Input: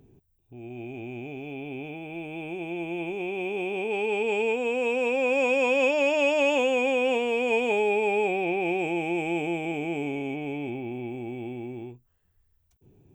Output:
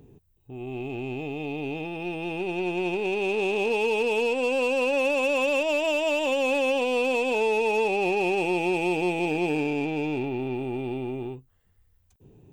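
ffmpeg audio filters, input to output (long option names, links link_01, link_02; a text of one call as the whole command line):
ffmpeg -i in.wav -af "alimiter=limit=-21dB:level=0:latency=1:release=282,asetrate=46305,aresample=44100,aeval=exprs='0.0944*(cos(1*acos(clip(val(0)/0.0944,-1,1)))-cos(1*PI/2))+0.00422*(cos(6*acos(clip(val(0)/0.0944,-1,1)))-cos(6*PI/2))+0.00531*(cos(8*acos(clip(val(0)/0.0944,-1,1)))-cos(8*PI/2))':channel_layout=same,volume=4.5dB" out.wav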